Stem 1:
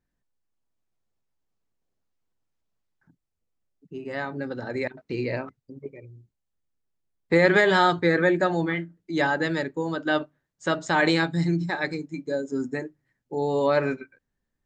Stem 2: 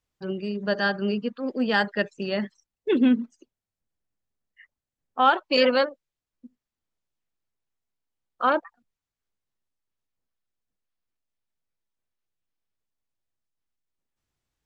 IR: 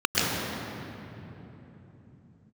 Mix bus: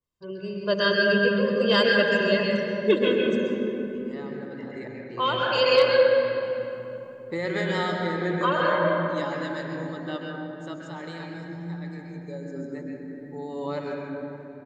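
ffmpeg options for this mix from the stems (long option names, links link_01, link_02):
-filter_complex "[0:a]volume=-5.5dB,afade=type=out:start_time=10.31:duration=0.63:silence=0.446684,afade=type=in:start_time=11.85:duration=0.23:silence=0.421697,asplit=3[link_01][link_02][link_03];[link_02]volume=-17dB[link_04];[1:a]aecho=1:1:1.9:0.96,dynaudnorm=framelen=110:gausssize=11:maxgain=16.5dB,volume=-10.5dB,asplit=2[link_05][link_06];[link_06]volume=-16dB[link_07];[link_03]apad=whole_len=646371[link_08];[link_05][link_08]sidechaincompress=threshold=-41dB:ratio=8:attack=7.7:release=1230[link_09];[2:a]atrim=start_sample=2205[link_10];[link_04][link_07]amix=inputs=2:normalize=0[link_11];[link_11][link_10]afir=irnorm=-1:irlink=0[link_12];[link_01][link_09][link_12]amix=inputs=3:normalize=0,asoftclip=type=hard:threshold=-9dB,adynamicequalizer=threshold=0.0126:dfrequency=2000:dqfactor=0.7:tfrequency=2000:tqfactor=0.7:attack=5:release=100:ratio=0.375:range=2.5:mode=boostabove:tftype=highshelf"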